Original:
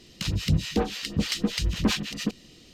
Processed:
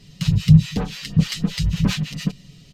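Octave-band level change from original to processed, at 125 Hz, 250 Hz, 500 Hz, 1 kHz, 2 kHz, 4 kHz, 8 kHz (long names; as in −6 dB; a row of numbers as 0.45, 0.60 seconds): +12.0, +7.5, −4.0, −1.5, +0.5, +0.5, +0.5 decibels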